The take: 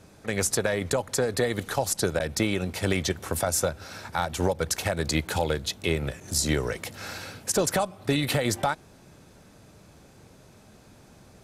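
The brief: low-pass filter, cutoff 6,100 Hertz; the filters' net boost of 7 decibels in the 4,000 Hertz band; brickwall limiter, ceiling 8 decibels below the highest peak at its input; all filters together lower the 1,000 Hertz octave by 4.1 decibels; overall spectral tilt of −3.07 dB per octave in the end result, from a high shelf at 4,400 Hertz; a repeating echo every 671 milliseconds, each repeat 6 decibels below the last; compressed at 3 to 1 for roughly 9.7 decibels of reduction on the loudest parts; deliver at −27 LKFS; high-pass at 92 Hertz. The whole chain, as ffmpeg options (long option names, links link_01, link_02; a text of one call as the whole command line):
ffmpeg -i in.wav -af "highpass=92,lowpass=6100,equalizer=frequency=1000:width_type=o:gain=-6.5,equalizer=frequency=4000:width_type=o:gain=7,highshelf=frequency=4400:gain=5,acompressor=threshold=-33dB:ratio=3,alimiter=limit=-24dB:level=0:latency=1,aecho=1:1:671|1342|2013|2684|3355|4026:0.501|0.251|0.125|0.0626|0.0313|0.0157,volume=8dB" out.wav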